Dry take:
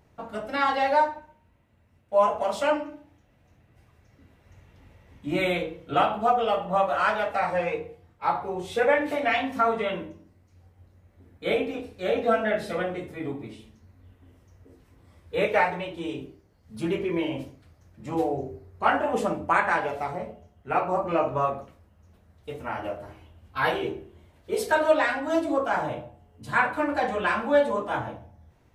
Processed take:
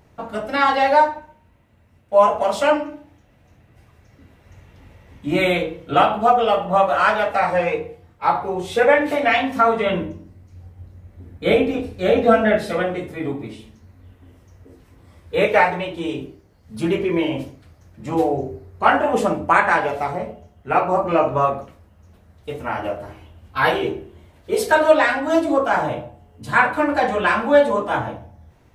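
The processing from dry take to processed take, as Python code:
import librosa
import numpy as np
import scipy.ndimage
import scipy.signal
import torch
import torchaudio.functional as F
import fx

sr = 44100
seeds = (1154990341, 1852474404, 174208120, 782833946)

y = fx.low_shelf(x, sr, hz=250.0, db=8.5, at=(9.86, 12.58))
y = y * 10.0 ** (7.0 / 20.0)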